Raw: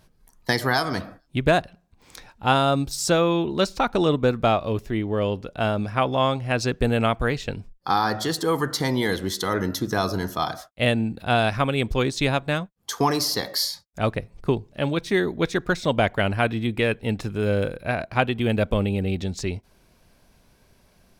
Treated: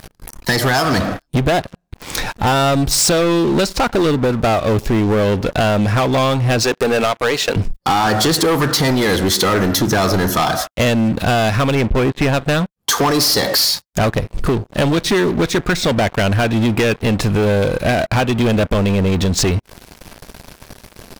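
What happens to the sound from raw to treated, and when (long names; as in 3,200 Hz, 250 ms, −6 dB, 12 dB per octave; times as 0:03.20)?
0:06.63–0:07.56: high-pass filter 370 Hz
0:11.75–0:12.34: Butterworth low-pass 2,600 Hz
whole clip: downward compressor 6 to 1, threshold −32 dBFS; leveller curve on the samples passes 5; level +7 dB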